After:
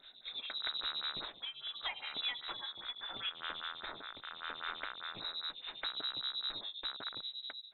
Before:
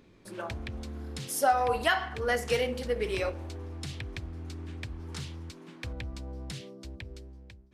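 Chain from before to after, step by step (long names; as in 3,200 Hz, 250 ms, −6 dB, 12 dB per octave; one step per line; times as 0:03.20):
loose part that buzzes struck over −42 dBFS, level −33 dBFS
0:02.72–0:05.21: high-pass filter 320 Hz 12 dB per octave
downward compressor 20 to 1, threshold −40 dBFS, peak gain reduction 22 dB
wave folding −36.5 dBFS
rotating-speaker cabinet horn 0.8 Hz
voice inversion scrambler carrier 3,900 Hz
phaser with staggered stages 5 Hz
level +10.5 dB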